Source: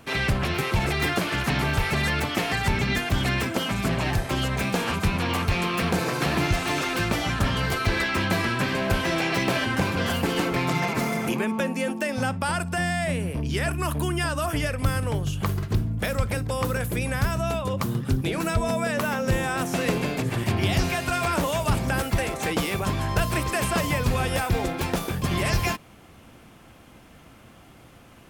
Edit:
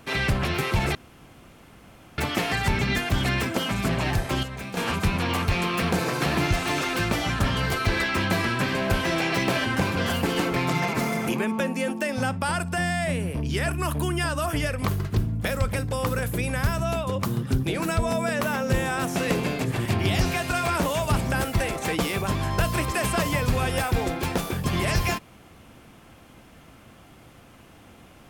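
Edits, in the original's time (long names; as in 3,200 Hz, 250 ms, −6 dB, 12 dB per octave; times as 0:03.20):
0:00.95–0:02.18: fill with room tone
0:04.43–0:04.77: clip gain −9 dB
0:14.85–0:15.43: remove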